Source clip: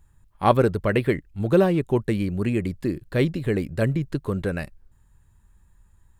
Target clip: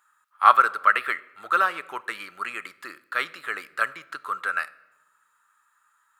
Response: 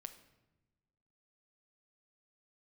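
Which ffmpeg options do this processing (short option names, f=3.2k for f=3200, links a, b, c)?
-filter_complex "[0:a]highpass=f=1.3k:t=q:w=11,asplit=2[a][b];[1:a]atrim=start_sample=2205[c];[b][c]afir=irnorm=-1:irlink=0,volume=2dB[d];[a][d]amix=inputs=2:normalize=0,volume=-4dB"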